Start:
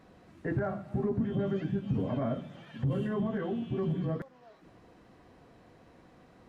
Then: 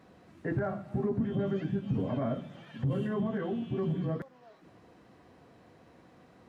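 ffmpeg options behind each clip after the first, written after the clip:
ffmpeg -i in.wav -af "highpass=70" out.wav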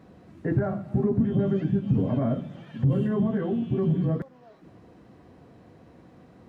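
ffmpeg -i in.wav -af "lowshelf=frequency=500:gain=9" out.wav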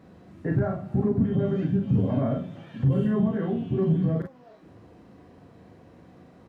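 ffmpeg -i in.wav -af "aecho=1:1:37|48:0.596|0.376,volume=-1dB" out.wav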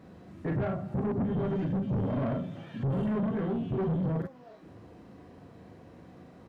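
ffmpeg -i in.wav -af "asoftclip=type=tanh:threshold=-26dB" out.wav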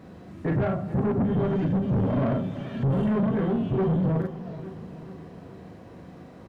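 ffmpeg -i in.wav -af "aecho=1:1:430|860|1290|1720|2150|2580:0.178|0.105|0.0619|0.0365|0.0215|0.0127,volume=5.5dB" out.wav

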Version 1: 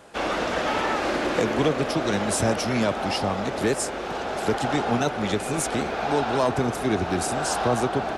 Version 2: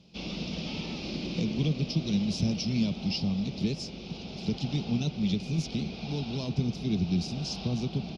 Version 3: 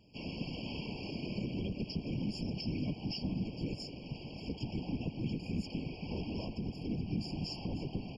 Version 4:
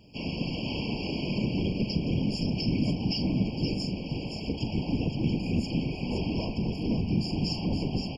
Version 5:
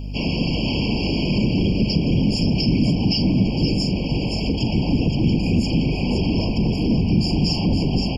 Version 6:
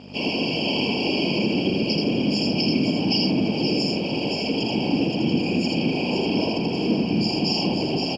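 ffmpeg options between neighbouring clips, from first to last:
ffmpeg -i in.wav -af "firequalizer=gain_entry='entry(110,0);entry(170,10);entry(280,-6);entry(550,-16);entry(1700,-29);entry(2400,-5);entry(5200,3);entry(8000,-27)':delay=0.05:min_phase=1,volume=-3dB" out.wav
ffmpeg -i in.wav -af "alimiter=limit=-23.5dB:level=0:latency=1:release=93,afftfilt=real='hypot(re,im)*cos(2*PI*random(0))':imag='hypot(re,im)*sin(2*PI*random(1))':win_size=512:overlap=0.75,afftfilt=real='re*eq(mod(floor(b*sr/1024/1100),2),0)':imag='im*eq(mod(floor(b*sr/1024/1100),2),0)':win_size=1024:overlap=0.75,volume=1dB" out.wav
ffmpeg -i in.wav -af "aecho=1:1:42|519:0.299|0.501,volume=8dB" out.wav
ffmpeg -i in.wav -filter_complex "[0:a]acrossover=split=370|3000[link_01][link_02][link_03];[link_02]acompressor=threshold=-40dB:ratio=6[link_04];[link_01][link_04][link_03]amix=inputs=3:normalize=0,aeval=exprs='val(0)+0.01*(sin(2*PI*50*n/s)+sin(2*PI*2*50*n/s)/2+sin(2*PI*3*50*n/s)/3+sin(2*PI*4*50*n/s)/4+sin(2*PI*5*50*n/s)/5)':channel_layout=same,asplit=2[link_05][link_06];[link_06]alimiter=level_in=3dB:limit=-24dB:level=0:latency=1:release=21,volume=-3dB,volume=1dB[link_07];[link_05][link_07]amix=inputs=2:normalize=0,volume=5.5dB" out.wav
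ffmpeg -i in.wav -af "aeval=exprs='sgn(val(0))*max(abs(val(0))-0.00531,0)':channel_layout=same,highpass=300,lowpass=5300,aecho=1:1:81:0.708,volume=2dB" out.wav

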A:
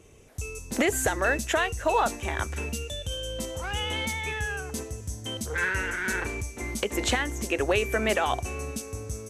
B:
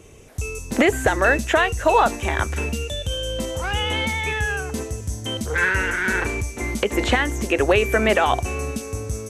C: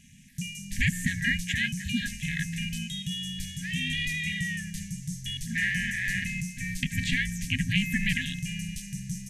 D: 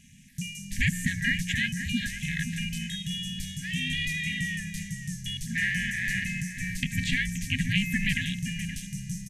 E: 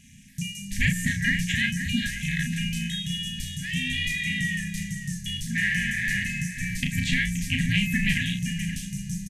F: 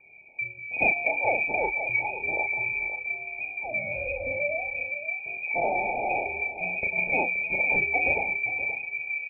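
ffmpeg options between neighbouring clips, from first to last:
ffmpeg -i in.wav -filter_complex "[0:a]acrossover=split=3200[link_01][link_02];[link_02]acompressor=threshold=-40dB:ratio=4:attack=1:release=60[link_03];[link_01][link_03]amix=inputs=2:normalize=0,volume=7.5dB" out.wav
ffmpeg -i in.wav -af "aeval=exprs='val(0)*sin(2*PI*240*n/s)':channel_layout=same,afftfilt=real='re*(1-between(b*sr/4096,260,1600))':imag='im*(1-between(b*sr/4096,260,1600))':win_size=4096:overlap=0.75,volume=-2dB" out.wav
ffmpeg -i in.wav -filter_complex "[0:a]asplit=2[link_01][link_02];[link_02]adelay=524.8,volume=-10dB,highshelf=frequency=4000:gain=-11.8[link_03];[link_01][link_03]amix=inputs=2:normalize=0" out.wav
ffmpeg -i in.wav -filter_complex "[0:a]asplit=2[link_01][link_02];[link_02]asoftclip=type=tanh:threshold=-20.5dB,volume=-11.5dB[link_03];[link_01][link_03]amix=inputs=2:normalize=0,asplit=2[link_04][link_05];[link_05]adelay=35,volume=-5.5dB[link_06];[link_04][link_06]amix=inputs=2:normalize=0" out.wav
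ffmpeg -i in.wav -af "lowpass=frequency=2100:width_type=q:width=0.5098,lowpass=frequency=2100:width_type=q:width=0.6013,lowpass=frequency=2100:width_type=q:width=0.9,lowpass=frequency=2100:width_type=q:width=2.563,afreqshift=-2500" out.wav

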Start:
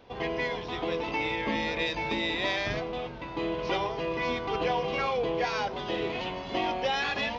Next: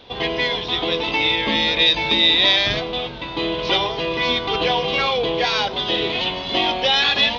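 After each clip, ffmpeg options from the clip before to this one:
ffmpeg -i in.wav -af "equalizer=frequency=3600:width=1.9:gain=14,volume=7dB" out.wav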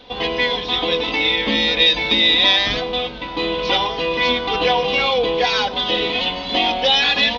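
ffmpeg -i in.wav -af "aecho=1:1:4:0.55" out.wav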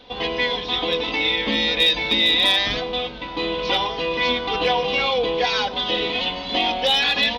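ffmpeg -i in.wav -af "asoftclip=type=hard:threshold=-7dB,volume=-3dB" out.wav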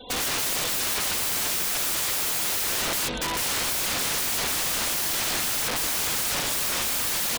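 ffmpeg -i in.wav -af "aeval=exprs='(mod(22.4*val(0)+1,2)-1)/22.4':channel_layout=same,aecho=1:1:305:0.106,afftfilt=real='re*gte(hypot(re,im),0.00631)':imag='im*gte(hypot(re,im),0.00631)':win_size=1024:overlap=0.75,volume=5.5dB" out.wav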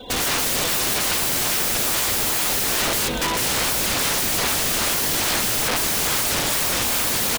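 ffmpeg -i in.wav -filter_complex "[0:a]asplit=2[link_01][link_02];[link_02]acrusher=samples=21:mix=1:aa=0.000001:lfo=1:lforange=33.6:lforate=2.4,volume=-10.5dB[link_03];[link_01][link_03]amix=inputs=2:normalize=0,aecho=1:1:430:0.178,volume=4dB" out.wav

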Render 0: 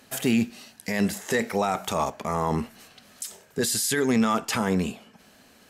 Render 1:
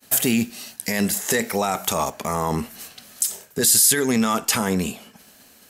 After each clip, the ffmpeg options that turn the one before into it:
ffmpeg -i in.wav -filter_complex "[0:a]asplit=2[link_01][link_02];[link_02]acompressor=threshold=-33dB:ratio=6,volume=-1.5dB[link_03];[link_01][link_03]amix=inputs=2:normalize=0,agate=range=-33dB:threshold=-44dB:ratio=3:detection=peak,aemphasis=mode=production:type=50kf" out.wav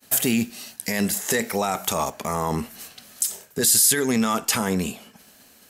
ffmpeg -i in.wav -af "asoftclip=type=hard:threshold=-5dB,volume=-1.5dB" out.wav

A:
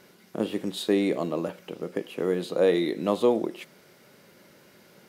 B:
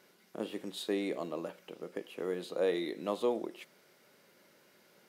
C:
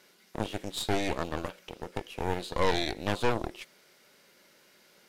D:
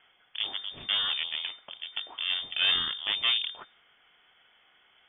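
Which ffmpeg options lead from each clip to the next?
ffmpeg -i in.wav -af "lowshelf=frequency=180:gain=-12,volume=-7.5dB" out.wav
ffmpeg -i in.wav -af "aeval=exprs='0.112*(cos(1*acos(clip(val(0)/0.112,-1,1)))-cos(1*PI/2))+0.0398*(cos(4*acos(clip(val(0)/0.112,-1,1)))-cos(4*PI/2))+0.0126*(cos(8*acos(clip(val(0)/0.112,-1,1)))-cos(8*PI/2))':channel_layout=same,equalizer=frequency=5000:width=0.32:gain=6.5" out.wav
ffmpeg -i in.wav -af "lowpass=frequency=3100:width_type=q:width=0.5098,lowpass=frequency=3100:width_type=q:width=0.6013,lowpass=frequency=3100:width_type=q:width=0.9,lowpass=frequency=3100:width_type=q:width=2.563,afreqshift=-3600" out.wav

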